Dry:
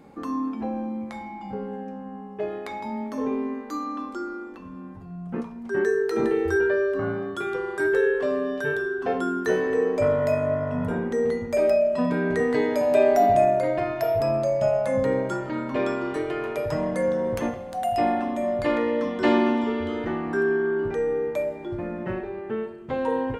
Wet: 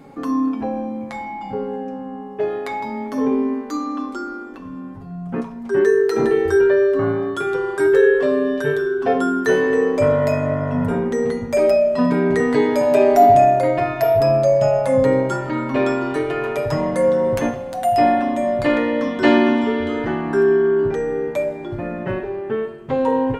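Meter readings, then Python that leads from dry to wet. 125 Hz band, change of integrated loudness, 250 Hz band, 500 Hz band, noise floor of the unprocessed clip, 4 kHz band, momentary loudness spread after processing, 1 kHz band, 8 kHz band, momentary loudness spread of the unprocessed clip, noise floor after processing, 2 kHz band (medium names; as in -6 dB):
+7.5 dB, +6.5 dB, +6.5 dB, +6.5 dB, -39 dBFS, +7.0 dB, 13 LU, +7.5 dB, no reading, 12 LU, -32 dBFS, +4.5 dB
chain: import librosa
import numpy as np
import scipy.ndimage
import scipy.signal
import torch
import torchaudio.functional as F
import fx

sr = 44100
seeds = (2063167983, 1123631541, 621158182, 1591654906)

y = x + 0.5 * np.pad(x, (int(7.3 * sr / 1000.0), 0))[:len(x)]
y = F.gain(torch.from_numpy(y), 5.5).numpy()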